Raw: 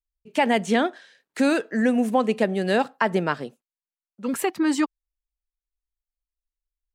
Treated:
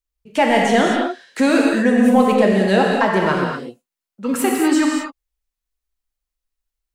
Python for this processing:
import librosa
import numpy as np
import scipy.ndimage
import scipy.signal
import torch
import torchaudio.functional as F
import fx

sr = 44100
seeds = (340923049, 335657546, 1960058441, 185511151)

p1 = 10.0 ** (-17.5 / 20.0) * np.tanh(x / 10.0 ** (-17.5 / 20.0))
p2 = x + (p1 * 10.0 ** (-4.0 / 20.0))
y = fx.rev_gated(p2, sr, seeds[0], gate_ms=270, shape='flat', drr_db=-1.5)